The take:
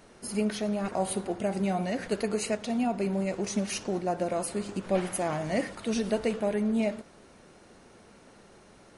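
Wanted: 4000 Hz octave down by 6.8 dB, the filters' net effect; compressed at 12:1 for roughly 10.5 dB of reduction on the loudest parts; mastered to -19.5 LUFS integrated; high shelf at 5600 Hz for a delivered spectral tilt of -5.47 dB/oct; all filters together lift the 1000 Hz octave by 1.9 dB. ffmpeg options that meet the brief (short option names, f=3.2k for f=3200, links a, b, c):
-af "equalizer=f=1k:t=o:g=3.5,equalizer=f=4k:t=o:g=-8.5,highshelf=f=5.6k:g=-3,acompressor=threshold=-33dB:ratio=12,volume=18.5dB"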